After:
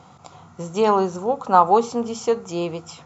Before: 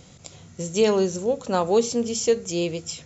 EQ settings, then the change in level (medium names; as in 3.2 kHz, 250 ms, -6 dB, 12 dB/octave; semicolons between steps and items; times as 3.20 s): high-pass 100 Hz; low-pass 2.5 kHz 6 dB/octave; high-order bell 1 kHz +14 dB 1.1 oct; 0.0 dB